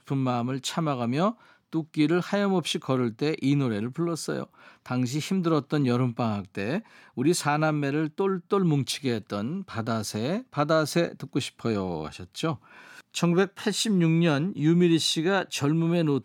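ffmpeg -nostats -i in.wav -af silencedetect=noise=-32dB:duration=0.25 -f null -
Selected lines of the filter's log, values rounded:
silence_start: 1.31
silence_end: 1.73 | silence_duration: 0.42
silence_start: 4.44
silence_end: 4.86 | silence_duration: 0.42
silence_start: 6.79
silence_end: 7.17 | silence_duration: 0.38
silence_start: 12.55
silence_end: 13.14 | silence_duration: 0.60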